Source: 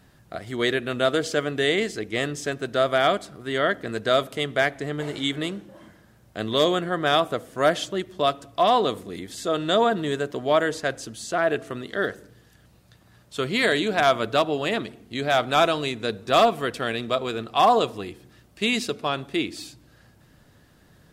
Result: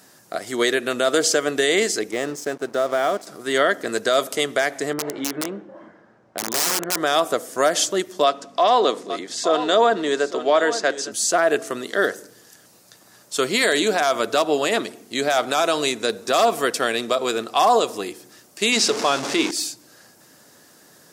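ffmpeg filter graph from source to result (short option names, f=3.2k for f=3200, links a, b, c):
-filter_complex "[0:a]asettb=1/sr,asplit=3[a][b][c];[a]atrim=end=2.114[d];[b]atrim=start=2.11:end=3.27,asetpts=PTS-STARTPTS,afade=t=in:d=0.004:c=qsin,afade=t=out:st=1.156:d=0.004:c=qsin,highshelf=f=2.2k:g=-12,acompressor=threshold=-24dB:ratio=2.5:attack=3.2:release=140:knee=1:detection=peak,aeval=exprs='sgn(val(0))*max(abs(val(0))-0.00447,0)':c=same[e];[c]atrim=start=3.266[f];[d][e]acrossfade=d=0.004:c1=hsin:c2=qsin[g];[g][f]acrossfade=d=0.004:c1=qsin:c2=hsin,asettb=1/sr,asplit=3[h][i][j];[h]atrim=end=4.934[k];[i]atrim=start=4.93:end=6.97,asetpts=PTS-STARTPTS,afade=t=in:d=0.004:c=qsin,afade=t=out:st=2.036:d=0.004:c=qsin,lowpass=1.6k,aeval=exprs='(mod(10.6*val(0)+1,2)-1)/10.6':c=same[l];[j]atrim=start=6.966[m];[k][l]acrossfade=d=0.004:c1=hsin:c2=qsin[n];[n][m]acrossfade=d=0.004:c1=qsin:c2=hsin,asettb=1/sr,asplit=3[o][p][q];[o]atrim=end=8.244[r];[p]atrim=start=8.24:end=11.12,asetpts=PTS-STARTPTS,afade=t=in:d=0.004:c=qsin,afade=t=out:st=2.876:d=0.004:c=qsin,aeval=exprs='val(0)+0.0126*(sin(2*PI*50*n/s)+sin(2*PI*2*50*n/s)/2+sin(2*PI*3*50*n/s)/3+sin(2*PI*4*50*n/s)/4+sin(2*PI*5*50*n/s)/5)':c=same,highpass=230,lowpass=5k,aecho=1:1:858:0.211,atrim=end_sample=127008[s];[q]atrim=start=11.116[t];[r][s]acrossfade=d=0.004:c1=hsin:c2=qsin[u];[u][t]acrossfade=d=0.004:c1=qsin:c2=hsin,asettb=1/sr,asplit=3[v][w][x];[v]atrim=end=18.724[y];[w]atrim=start=18.72:end=19.51,asetpts=PTS-STARTPTS,afade=t=in:d=0.004:c=qsin,afade=t=out:st=0.786:d=0.004:c=qsin,aeval=exprs='val(0)+0.5*0.0422*sgn(val(0))':c=same,highpass=100,lowpass=5.9k,bandreject=f=50:t=h:w=6,bandreject=f=100:t=h:w=6,bandreject=f=150:t=h:w=6,bandreject=f=200:t=h:w=6,bandreject=f=250:t=h:w=6,bandreject=f=300:t=h:w=6,bandreject=f=350:t=h:w=6,bandreject=f=400:t=h:w=6[z];[x]atrim=start=19.506[aa];[y][z]acrossfade=d=0.004:c1=hsin:c2=qsin[ab];[ab][aa]acrossfade=d=0.004:c1=qsin:c2=hsin,highpass=300,highshelf=f=4.4k:t=q:w=1.5:g=7.5,alimiter=limit=-14.5dB:level=0:latency=1:release=93,volume=7dB"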